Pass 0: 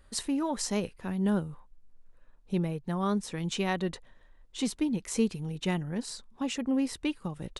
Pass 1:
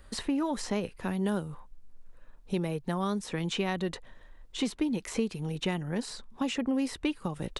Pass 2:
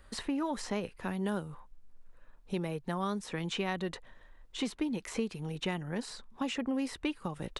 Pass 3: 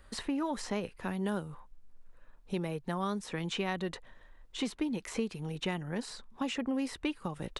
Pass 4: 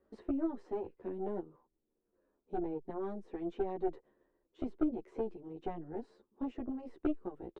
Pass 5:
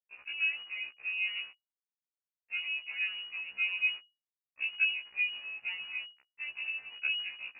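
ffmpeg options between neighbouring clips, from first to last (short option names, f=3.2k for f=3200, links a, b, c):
-filter_complex "[0:a]acrossover=split=310|3500[a][b][c];[a]acompressor=threshold=-40dB:ratio=4[d];[b]acompressor=threshold=-37dB:ratio=4[e];[c]acompressor=threshold=-51dB:ratio=4[f];[d][e][f]amix=inputs=3:normalize=0,volume=6dB"
-af "equalizer=f=1.4k:w=0.52:g=3.5,volume=-4.5dB"
-af anull
-filter_complex "[0:a]bandpass=f=360:t=q:w=4.1:csg=0,aeval=exprs='0.0501*(cos(1*acos(clip(val(0)/0.0501,-1,1)))-cos(1*PI/2))+0.0112*(cos(4*acos(clip(val(0)/0.0501,-1,1)))-cos(4*PI/2))':c=same,asplit=2[a][b];[b]adelay=10.8,afreqshift=-0.99[c];[a][c]amix=inputs=2:normalize=1,volume=7dB"
-af "acrusher=bits=8:mix=0:aa=0.000001,lowpass=f=2.5k:t=q:w=0.5098,lowpass=f=2.5k:t=q:w=0.6013,lowpass=f=2.5k:t=q:w=0.9,lowpass=f=2.5k:t=q:w=2.563,afreqshift=-2900,afftfilt=real='re*1.73*eq(mod(b,3),0)':imag='im*1.73*eq(mod(b,3),0)':win_size=2048:overlap=0.75,volume=4dB"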